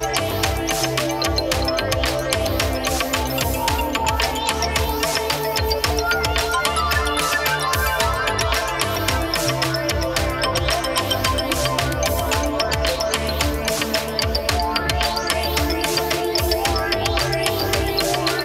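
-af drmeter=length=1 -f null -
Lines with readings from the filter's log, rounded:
Channel 1: DR: 14.7
Overall DR: 14.7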